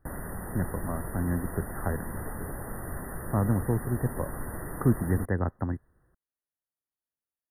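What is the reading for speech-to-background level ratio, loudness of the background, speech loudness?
7.5 dB, -38.5 LUFS, -31.0 LUFS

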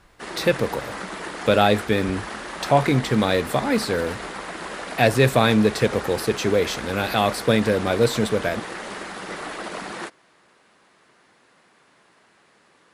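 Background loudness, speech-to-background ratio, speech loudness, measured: -32.5 LUFS, 11.0 dB, -21.5 LUFS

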